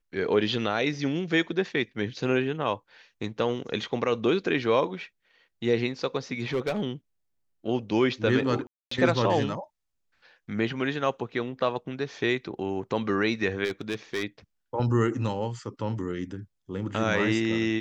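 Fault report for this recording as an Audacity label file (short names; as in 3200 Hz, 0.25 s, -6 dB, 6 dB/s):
6.400000	6.830000	clipped -22 dBFS
8.670000	8.910000	gap 0.244 s
13.640000	14.230000	clipped -24.5 dBFS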